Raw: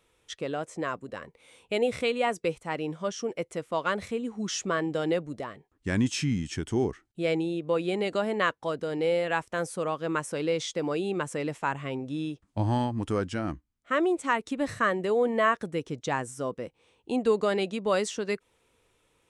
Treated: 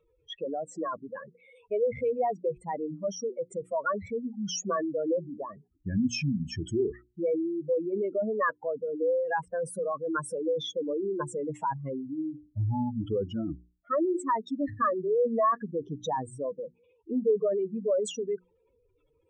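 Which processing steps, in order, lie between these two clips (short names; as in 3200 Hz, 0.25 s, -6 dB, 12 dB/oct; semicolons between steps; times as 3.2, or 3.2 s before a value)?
spectral contrast raised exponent 3.7; notches 60/120/180/240/300/360 Hz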